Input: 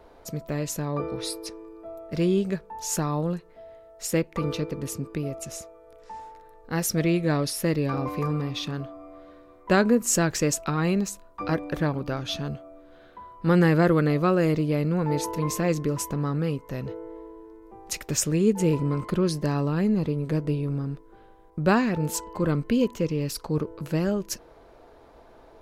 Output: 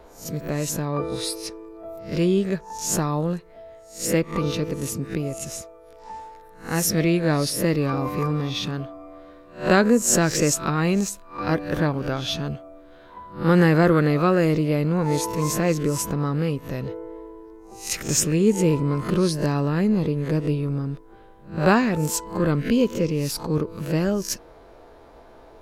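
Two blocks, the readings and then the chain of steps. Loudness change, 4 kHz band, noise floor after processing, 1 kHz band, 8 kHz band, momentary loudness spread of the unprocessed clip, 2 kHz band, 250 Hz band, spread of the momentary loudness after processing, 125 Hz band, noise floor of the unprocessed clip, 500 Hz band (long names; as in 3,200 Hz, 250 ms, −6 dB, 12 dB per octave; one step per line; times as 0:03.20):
+3.0 dB, +4.5 dB, −48 dBFS, +3.5 dB, +5.0 dB, 15 LU, +4.0 dB, +3.0 dB, 15 LU, +2.5 dB, −52 dBFS, +3.5 dB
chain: peak hold with a rise ahead of every peak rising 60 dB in 0.34 s
level +2.5 dB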